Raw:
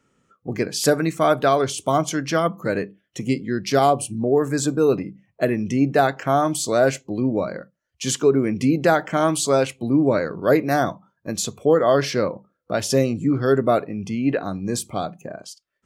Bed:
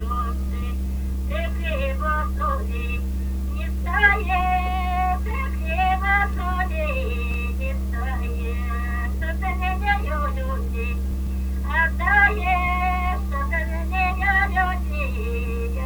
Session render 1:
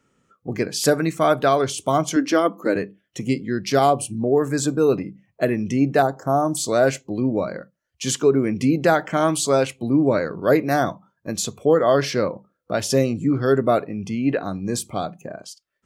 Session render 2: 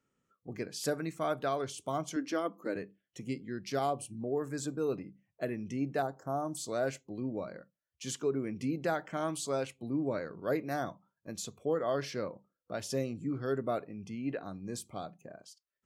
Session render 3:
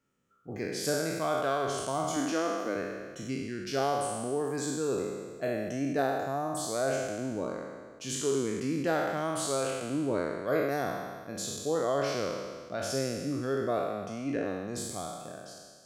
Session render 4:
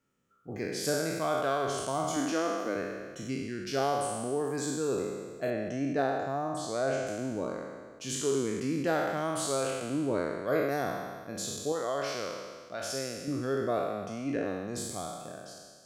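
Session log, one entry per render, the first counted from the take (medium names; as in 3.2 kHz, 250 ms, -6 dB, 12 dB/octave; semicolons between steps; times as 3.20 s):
2.16–2.76 s: resonant low shelf 190 Hz -13 dB, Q 3; 6.02–6.57 s: Butterworth band-stop 2.6 kHz, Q 0.55
trim -15 dB
spectral sustain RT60 1.65 s
5.50–7.07 s: distance through air 66 m; 11.72–13.28 s: bass shelf 500 Hz -8.5 dB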